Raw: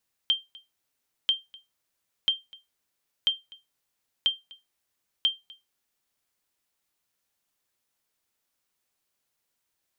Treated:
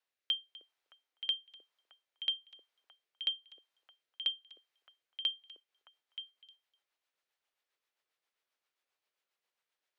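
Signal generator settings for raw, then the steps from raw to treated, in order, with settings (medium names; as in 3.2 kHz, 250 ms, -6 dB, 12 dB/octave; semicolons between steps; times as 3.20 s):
sonar ping 3.16 kHz, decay 0.20 s, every 0.99 s, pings 6, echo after 0.25 s, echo -24 dB -14.5 dBFS
three-band isolator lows -21 dB, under 410 Hz, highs -14 dB, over 4.4 kHz; rotary cabinet horn 1 Hz, later 7.5 Hz, at 5.23 s; on a send: repeats whose band climbs or falls 309 ms, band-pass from 370 Hz, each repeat 1.4 oct, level -4 dB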